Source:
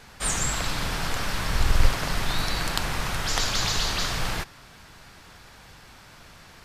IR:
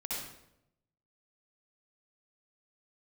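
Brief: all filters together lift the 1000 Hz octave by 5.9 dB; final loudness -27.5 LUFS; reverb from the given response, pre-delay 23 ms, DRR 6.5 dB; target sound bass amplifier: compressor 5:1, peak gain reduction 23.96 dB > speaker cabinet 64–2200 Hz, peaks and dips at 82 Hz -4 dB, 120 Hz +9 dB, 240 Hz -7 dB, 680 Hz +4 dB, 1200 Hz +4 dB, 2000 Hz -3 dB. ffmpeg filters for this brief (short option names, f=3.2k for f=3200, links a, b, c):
-filter_complex "[0:a]equalizer=f=1k:t=o:g=4.5,asplit=2[a][b];[1:a]atrim=start_sample=2205,adelay=23[c];[b][c]afir=irnorm=-1:irlink=0,volume=-9dB[d];[a][d]amix=inputs=2:normalize=0,acompressor=threshold=-38dB:ratio=5,highpass=f=64:w=0.5412,highpass=f=64:w=1.3066,equalizer=f=82:t=q:w=4:g=-4,equalizer=f=120:t=q:w=4:g=9,equalizer=f=240:t=q:w=4:g=-7,equalizer=f=680:t=q:w=4:g=4,equalizer=f=1.2k:t=q:w=4:g=4,equalizer=f=2k:t=q:w=4:g=-3,lowpass=f=2.2k:w=0.5412,lowpass=f=2.2k:w=1.3066,volume=15dB"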